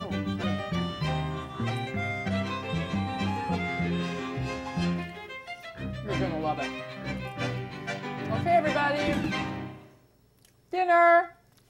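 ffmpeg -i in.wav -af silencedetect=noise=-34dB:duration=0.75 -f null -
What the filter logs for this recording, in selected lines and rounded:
silence_start: 9.71
silence_end: 10.73 | silence_duration: 1.02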